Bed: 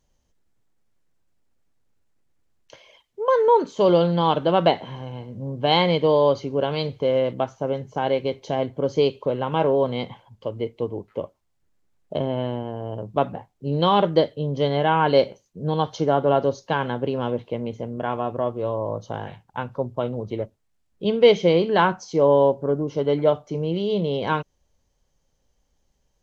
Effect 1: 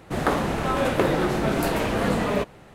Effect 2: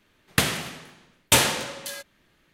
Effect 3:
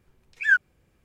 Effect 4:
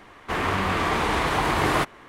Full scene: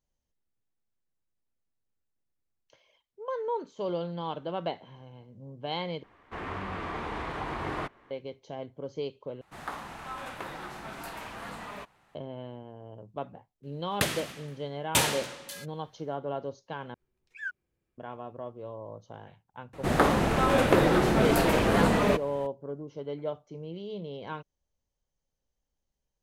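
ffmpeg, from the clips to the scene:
ffmpeg -i bed.wav -i cue0.wav -i cue1.wav -i cue2.wav -i cue3.wav -filter_complex "[1:a]asplit=2[link_01][link_02];[0:a]volume=-15dB[link_03];[4:a]aemphasis=mode=reproduction:type=75kf[link_04];[link_01]lowshelf=frequency=670:width_type=q:width=1.5:gain=-8[link_05];[3:a]equalizer=frequency=360:width=3.8:gain=6.5[link_06];[link_03]asplit=4[link_07][link_08][link_09][link_10];[link_07]atrim=end=6.034[link_11];[link_04]atrim=end=2.08,asetpts=PTS-STARTPTS,volume=-11dB[link_12];[link_08]atrim=start=8.106:end=9.414[link_13];[link_05]atrim=end=2.74,asetpts=PTS-STARTPTS,volume=-13.5dB[link_14];[link_09]atrim=start=12.146:end=16.944[link_15];[link_06]atrim=end=1.04,asetpts=PTS-STARTPTS,volume=-17.5dB[link_16];[link_10]atrim=start=17.976[link_17];[2:a]atrim=end=2.53,asetpts=PTS-STARTPTS,volume=-7dB,afade=type=in:duration=0.004:curve=hsin,afade=type=out:start_time=2.526:duration=0.004:curve=hsin,adelay=13630[link_18];[link_02]atrim=end=2.74,asetpts=PTS-STARTPTS,afade=type=in:duration=0.004:curve=hsin,afade=type=out:start_time=2.736:duration=0.004:curve=hsin,adelay=19730[link_19];[link_11][link_12]acrossfade=duration=0.004:curve1=hsin:curve2=hsin[link_20];[link_20][link_13]acrossfade=duration=0.004:curve1=hsin:curve2=hsin[link_21];[link_21][link_14]acrossfade=duration=0.004:curve1=hsin:curve2=hsin[link_22];[link_22][link_15]acrossfade=duration=0.004:curve1=hsin:curve2=hsin[link_23];[link_23][link_16]acrossfade=duration=0.004:curve1=hsin:curve2=hsin[link_24];[link_24][link_17]acrossfade=duration=0.004:curve1=hsin:curve2=hsin[link_25];[link_25][link_18][link_19]amix=inputs=3:normalize=0" out.wav

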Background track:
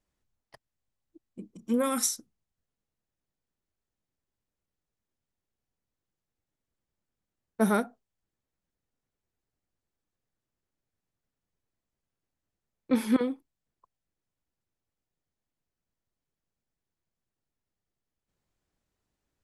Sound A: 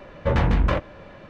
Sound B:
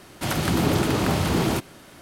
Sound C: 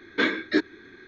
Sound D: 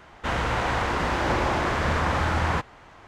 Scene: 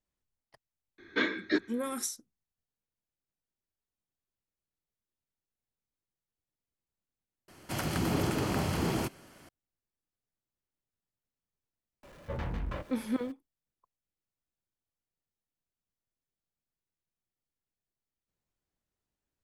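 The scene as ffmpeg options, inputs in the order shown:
ffmpeg -i bed.wav -i cue0.wav -i cue1.wav -i cue2.wav -filter_complex "[0:a]volume=-7.5dB[link_01];[2:a]bandreject=frequency=3700:width=8.5[link_02];[1:a]aeval=exprs='val(0)+0.5*0.015*sgn(val(0))':channel_layout=same[link_03];[link_01]asplit=2[link_04][link_05];[link_04]atrim=end=7.484[link_06];[link_02]atrim=end=2.01,asetpts=PTS-STARTPTS,volume=-8.5dB[link_07];[link_05]atrim=start=9.486[link_08];[3:a]atrim=end=1.07,asetpts=PTS-STARTPTS,volume=-6dB,afade=type=in:duration=0.004:curve=hsin,afade=type=out:start_time=1.066:duration=0.004:curve=hsin,adelay=980[link_09];[link_03]atrim=end=1.29,asetpts=PTS-STARTPTS,volume=-16.5dB,afade=type=in:duration=0.004:curve=hsin,afade=type=out:start_time=1.286:duration=0.004:curve=hsin,adelay=12030[link_10];[link_06][link_07]acrossfade=duration=0.004:curve1=hsin:curve2=hsin[link_11];[link_11][link_08]acrossfade=duration=0.004:curve1=hsin:curve2=hsin[link_12];[link_12][link_09][link_10]amix=inputs=3:normalize=0" out.wav

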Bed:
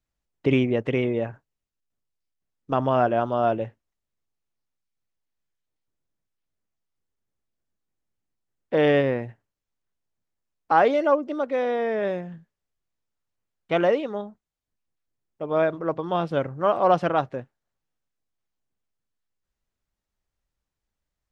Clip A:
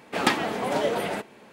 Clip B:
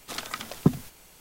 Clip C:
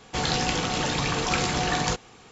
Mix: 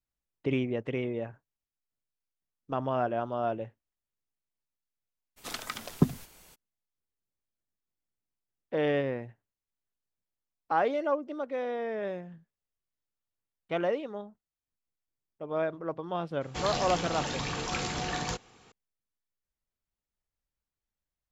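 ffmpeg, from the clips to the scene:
ffmpeg -i bed.wav -i cue0.wav -i cue1.wav -i cue2.wav -filter_complex "[0:a]volume=-8.5dB[link_01];[3:a]acontrast=42[link_02];[2:a]atrim=end=1.2,asetpts=PTS-STARTPTS,volume=-3dB,afade=type=in:duration=0.02,afade=type=out:start_time=1.18:duration=0.02,adelay=5360[link_03];[link_02]atrim=end=2.31,asetpts=PTS-STARTPTS,volume=-13.5dB,afade=type=in:duration=0.004:curve=hsin,afade=type=out:start_time=2.306:duration=0.004:curve=hsin,adelay=16410[link_04];[link_01][link_03][link_04]amix=inputs=3:normalize=0" out.wav

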